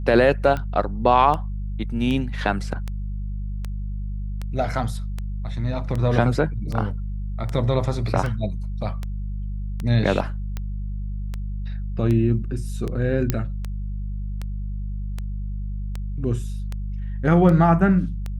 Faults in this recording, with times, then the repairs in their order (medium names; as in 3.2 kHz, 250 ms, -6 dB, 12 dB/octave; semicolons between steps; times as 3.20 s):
hum 50 Hz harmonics 4 -28 dBFS
tick 78 rpm -16 dBFS
13.30 s: pop -6 dBFS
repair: de-click; de-hum 50 Hz, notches 4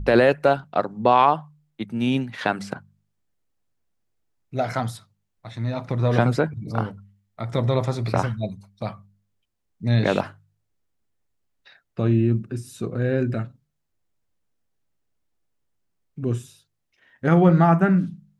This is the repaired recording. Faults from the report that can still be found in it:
nothing left